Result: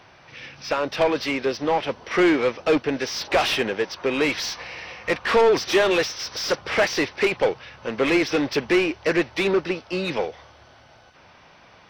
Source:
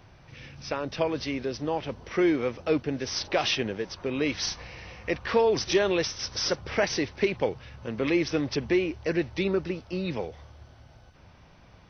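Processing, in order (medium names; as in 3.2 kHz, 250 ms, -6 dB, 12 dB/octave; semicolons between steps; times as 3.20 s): treble shelf 2.4 kHz +8 dB; overdrive pedal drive 24 dB, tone 1.7 kHz, clips at -8 dBFS; upward expansion 1.5:1, over -31 dBFS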